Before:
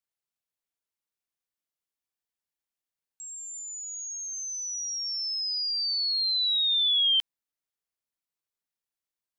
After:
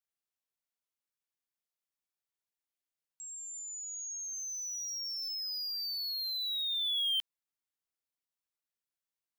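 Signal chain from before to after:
low-shelf EQ 410 Hz −2.5 dB
in parallel at −3.5 dB: wave folding −33.5 dBFS
on the sum: level −8.5 dB

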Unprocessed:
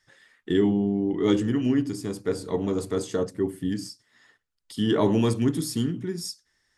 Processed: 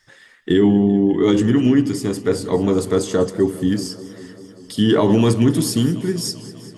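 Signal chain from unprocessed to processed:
boost into a limiter +14 dB
feedback echo with a swinging delay time 196 ms, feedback 76%, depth 99 cents, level −18 dB
level −5 dB

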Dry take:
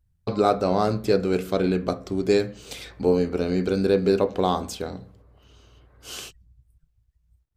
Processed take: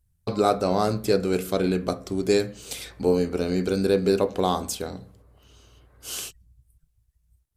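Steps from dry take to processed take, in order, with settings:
parametric band 11,000 Hz +11.5 dB 1.3 octaves
level −1 dB

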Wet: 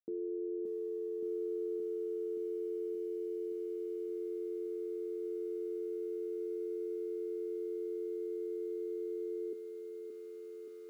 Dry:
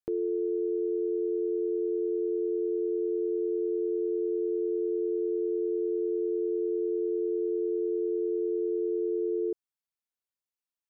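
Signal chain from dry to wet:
four-pole ladder band-pass 270 Hz, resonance 45%
mains-hum notches 60/120/180/240 Hz
feedback echo at a low word length 573 ms, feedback 80%, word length 12 bits, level −6.5 dB
level +3 dB

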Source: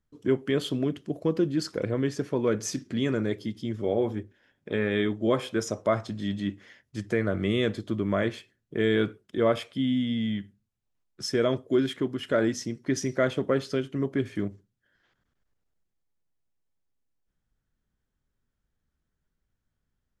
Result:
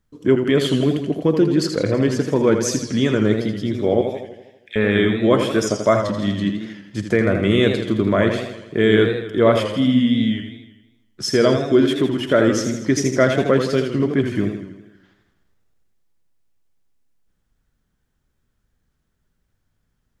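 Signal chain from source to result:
0:04.01–0:04.76: Chebyshev high-pass filter 2,000 Hz, order 4
feedback echo with a swinging delay time 81 ms, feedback 58%, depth 115 cents, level −7 dB
level +8.5 dB

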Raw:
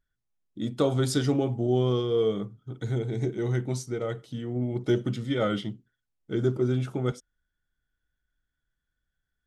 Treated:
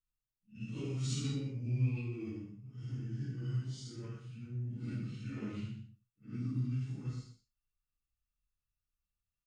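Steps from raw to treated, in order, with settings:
random phases in long frames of 200 ms
formants moved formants −4 semitones
guitar amp tone stack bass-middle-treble 6-0-2
on a send: single-tap delay 123 ms −12 dB
on the sum: reverb whose tail is shaped and stops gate 110 ms flat, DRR 2 dB
level +4 dB

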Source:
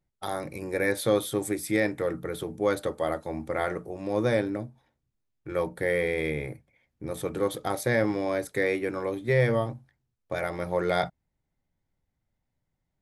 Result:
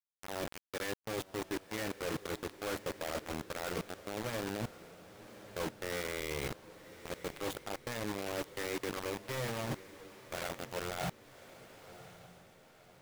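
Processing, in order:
converter with a step at zero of −31.5 dBFS
low-pass filter 3,700 Hz 6 dB per octave
noise gate −30 dBFS, range −6 dB
reversed playback
downward compressor 8 to 1, threshold −36 dBFS, peak gain reduction 18 dB
reversed playback
bit reduction 6 bits
feedback delay with all-pass diffusion 1,100 ms, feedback 45%, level −14.5 dB
level −1 dB

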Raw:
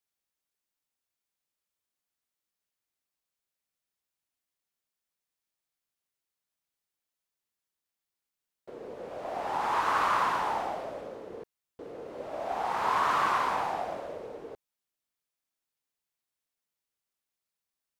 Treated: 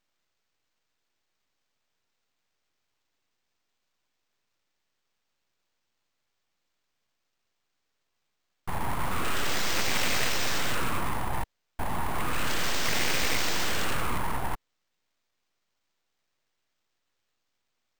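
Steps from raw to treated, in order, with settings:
low shelf with overshoot 170 Hz −12 dB, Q 1.5
in parallel at −8.5 dB: sine wavefolder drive 19 dB, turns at −14.5 dBFS
on the sum: bad sample-rate conversion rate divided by 4×, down filtered, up hold
full-wave rectification

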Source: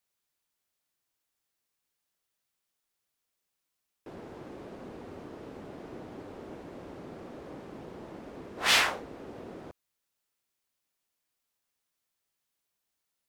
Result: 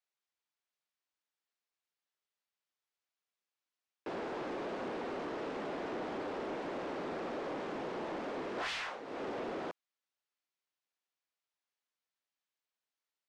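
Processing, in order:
high-pass filter 170 Hz 12 dB per octave
low-shelf EQ 310 Hz −12 dB
downward compressor 12 to 1, threshold −43 dBFS, peak gain reduction 24 dB
leveller curve on the samples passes 3
high-frequency loss of the air 100 metres
level +1 dB

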